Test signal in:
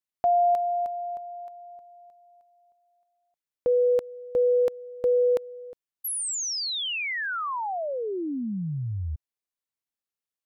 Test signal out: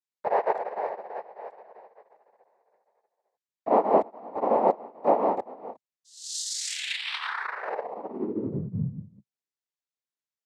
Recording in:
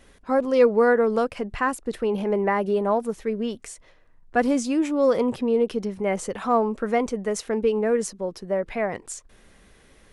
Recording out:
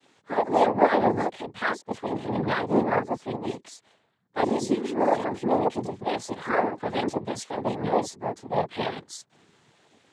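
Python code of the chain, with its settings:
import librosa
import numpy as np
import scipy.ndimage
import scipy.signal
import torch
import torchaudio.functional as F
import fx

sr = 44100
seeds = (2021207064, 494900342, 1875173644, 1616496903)

y = fx.chorus_voices(x, sr, voices=4, hz=0.44, base_ms=22, depth_ms=4.5, mix_pct=60)
y = fx.noise_vocoder(y, sr, seeds[0], bands=6)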